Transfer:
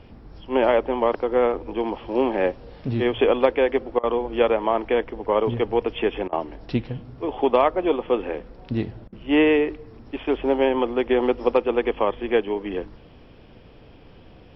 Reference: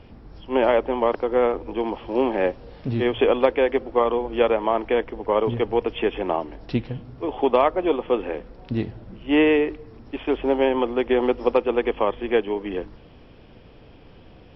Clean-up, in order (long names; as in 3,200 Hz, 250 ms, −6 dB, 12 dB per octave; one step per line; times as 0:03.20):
repair the gap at 0:03.99/0:06.28/0:09.08, 44 ms